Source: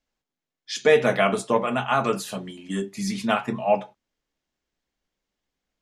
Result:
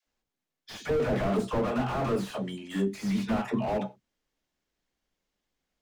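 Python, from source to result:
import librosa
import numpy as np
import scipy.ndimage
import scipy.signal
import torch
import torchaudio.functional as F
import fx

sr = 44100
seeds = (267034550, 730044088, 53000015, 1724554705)

y = fx.vibrato(x, sr, rate_hz=8.7, depth_cents=10.0)
y = fx.dispersion(y, sr, late='lows', ms=69.0, hz=440.0)
y = fx.slew_limit(y, sr, full_power_hz=29.0)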